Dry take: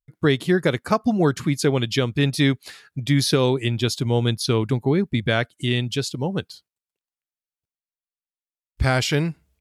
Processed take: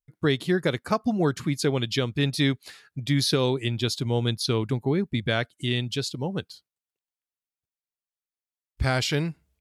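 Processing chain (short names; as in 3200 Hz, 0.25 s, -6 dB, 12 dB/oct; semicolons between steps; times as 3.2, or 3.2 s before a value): dynamic EQ 4100 Hz, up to +4 dB, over -39 dBFS, Q 2.3; gain -4.5 dB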